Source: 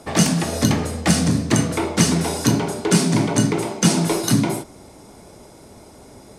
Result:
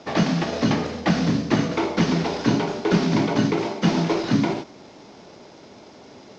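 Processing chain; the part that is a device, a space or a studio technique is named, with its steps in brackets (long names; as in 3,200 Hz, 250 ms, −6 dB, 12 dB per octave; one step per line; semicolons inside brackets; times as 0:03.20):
early wireless headset (high-pass filter 160 Hz 12 dB per octave; variable-slope delta modulation 32 kbit/s)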